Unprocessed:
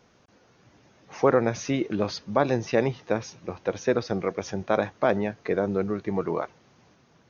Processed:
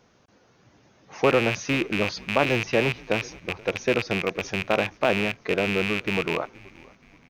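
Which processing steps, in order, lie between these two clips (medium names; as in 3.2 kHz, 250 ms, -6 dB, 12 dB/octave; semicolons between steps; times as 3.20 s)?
rattle on loud lows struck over -35 dBFS, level -14 dBFS; frequency-shifting echo 476 ms, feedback 44%, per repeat -84 Hz, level -23 dB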